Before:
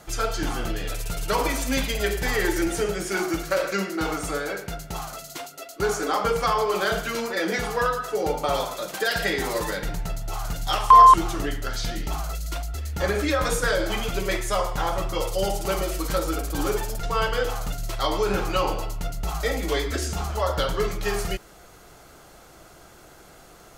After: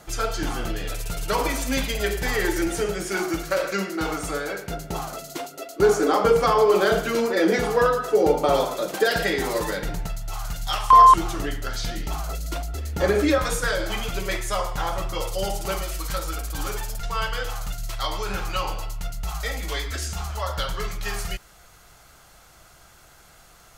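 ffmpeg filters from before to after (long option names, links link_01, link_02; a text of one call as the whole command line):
ffmpeg -i in.wav -af "asetnsamples=nb_out_samples=441:pad=0,asendcmd='4.7 equalizer g 8.5;9.23 equalizer g 2.5;10.07 equalizer g -9;10.93 equalizer g -1;12.28 equalizer g 6;13.38 equalizer g -4;15.78 equalizer g -11',equalizer=frequency=350:width_type=o:width=1.9:gain=0" out.wav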